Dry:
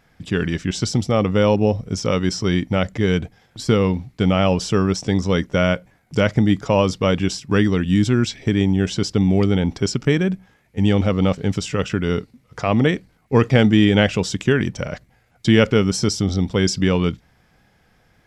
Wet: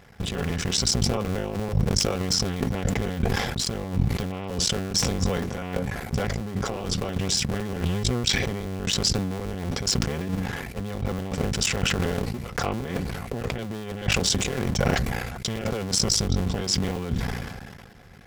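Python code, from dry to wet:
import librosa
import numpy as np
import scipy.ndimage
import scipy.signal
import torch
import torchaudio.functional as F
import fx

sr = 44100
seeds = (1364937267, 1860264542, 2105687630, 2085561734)

y = fx.cycle_switch(x, sr, every=2, mode='muted')
y = fx.low_shelf(y, sr, hz=400.0, db=3.5)
y = fx.over_compress(y, sr, threshold_db=-28.0, ratio=-1.0)
y = fx.notch_comb(y, sr, f0_hz=310.0)
y = fx.sustainer(y, sr, db_per_s=33.0)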